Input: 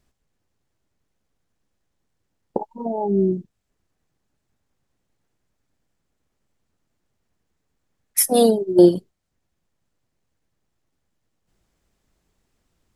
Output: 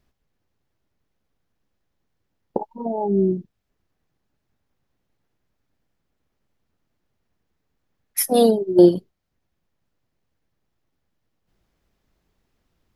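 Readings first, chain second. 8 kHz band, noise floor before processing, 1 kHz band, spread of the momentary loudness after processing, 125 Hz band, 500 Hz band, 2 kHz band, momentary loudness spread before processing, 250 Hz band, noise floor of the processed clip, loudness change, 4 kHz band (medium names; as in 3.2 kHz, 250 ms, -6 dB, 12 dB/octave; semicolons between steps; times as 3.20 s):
-5.0 dB, -76 dBFS, 0.0 dB, 16 LU, 0.0 dB, 0.0 dB, -0.5 dB, 16 LU, 0.0 dB, -76 dBFS, -0.5 dB, -1.5 dB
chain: peaking EQ 8.1 kHz -9 dB 0.76 oct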